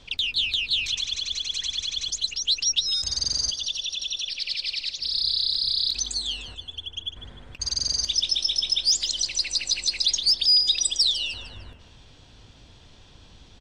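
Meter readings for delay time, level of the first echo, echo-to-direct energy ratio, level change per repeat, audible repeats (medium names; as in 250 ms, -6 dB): 151 ms, -12.0 dB, -11.5 dB, -8.0 dB, 3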